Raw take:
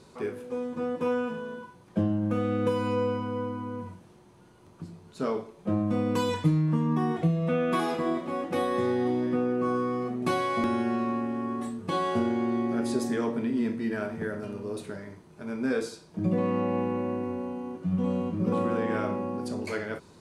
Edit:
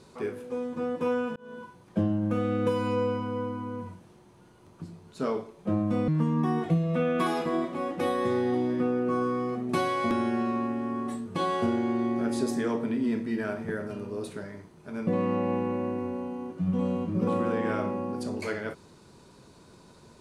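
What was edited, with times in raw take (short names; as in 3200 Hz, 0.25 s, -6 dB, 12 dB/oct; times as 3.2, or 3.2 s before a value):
1.36–1.62 fade in
6.08–6.61 cut
15.6–16.32 cut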